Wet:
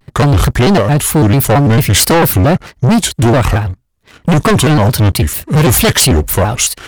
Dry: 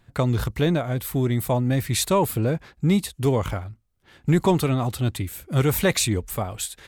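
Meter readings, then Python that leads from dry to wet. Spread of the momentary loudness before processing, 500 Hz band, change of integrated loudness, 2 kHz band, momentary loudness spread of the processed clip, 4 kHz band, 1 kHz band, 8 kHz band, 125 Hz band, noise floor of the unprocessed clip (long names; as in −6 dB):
9 LU, +11.0 dB, +12.5 dB, +14.5 dB, 5 LU, +15.0 dB, +13.5 dB, +15.0 dB, +12.5 dB, −62 dBFS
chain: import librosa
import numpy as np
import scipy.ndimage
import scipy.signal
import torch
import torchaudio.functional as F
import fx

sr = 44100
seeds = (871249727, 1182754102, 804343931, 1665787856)

y = fx.leveller(x, sr, passes=2)
y = fx.fold_sine(y, sr, drive_db=5, ceiling_db=-8.0)
y = fx.vibrato_shape(y, sr, shape='square', rate_hz=4.5, depth_cents=250.0)
y = y * librosa.db_to_amplitude(2.0)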